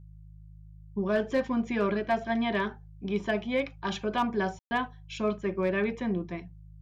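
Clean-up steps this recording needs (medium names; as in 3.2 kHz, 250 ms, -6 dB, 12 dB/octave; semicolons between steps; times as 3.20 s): clip repair -18.5 dBFS; de-hum 52.2 Hz, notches 3; room tone fill 4.59–4.71 s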